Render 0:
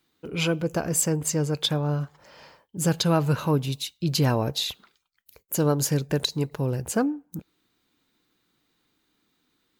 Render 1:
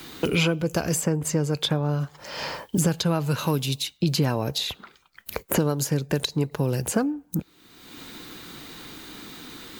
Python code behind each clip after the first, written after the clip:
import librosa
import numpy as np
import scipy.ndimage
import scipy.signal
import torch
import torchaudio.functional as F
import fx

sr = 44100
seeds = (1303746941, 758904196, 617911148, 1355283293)

y = fx.band_squash(x, sr, depth_pct=100)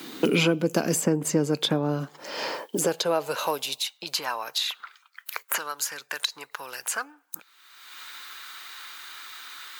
y = fx.filter_sweep_highpass(x, sr, from_hz=240.0, to_hz=1300.0, start_s=1.97, end_s=4.65, q=1.7)